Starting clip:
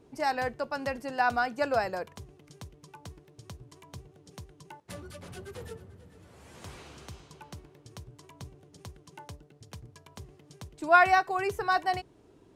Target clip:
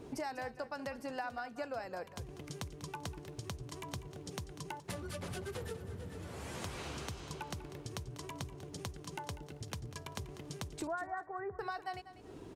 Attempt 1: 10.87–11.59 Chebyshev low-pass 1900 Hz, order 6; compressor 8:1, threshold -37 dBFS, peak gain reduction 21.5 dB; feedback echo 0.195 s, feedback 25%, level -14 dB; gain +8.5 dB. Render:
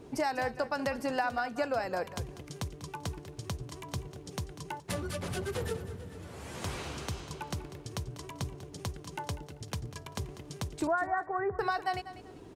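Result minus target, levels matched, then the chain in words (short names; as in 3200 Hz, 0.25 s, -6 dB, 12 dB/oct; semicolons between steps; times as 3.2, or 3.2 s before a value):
compressor: peak gain reduction -9 dB
10.87–11.59 Chebyshev low-pass 1900 Hz, order 6; compressor 8:1, threshold -47.5 dBFS, peak gain reduction 30.5 dB; feedback echo 0.195 s, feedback 25%, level -14 dB; gain +8.5 dB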